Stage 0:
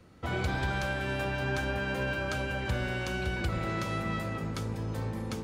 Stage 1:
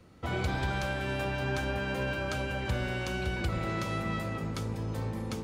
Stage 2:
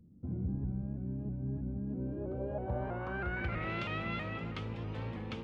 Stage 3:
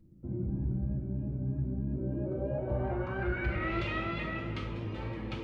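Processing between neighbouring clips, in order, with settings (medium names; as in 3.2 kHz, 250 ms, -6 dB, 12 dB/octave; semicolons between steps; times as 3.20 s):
peaking EQ 1.6 kHz -2.5 dB 0.34 oct
low-pass sweep 220 Hz -> 2.9 kHz, 1.84–3.75 s; vibrato with a chosen wave saw up 3.1 Hz, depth 100 cents; trim -5.5 dB
reverberation RT60 0.95 s, pre-delay 3 ms, DRR -2.5 dB; trim -2 dB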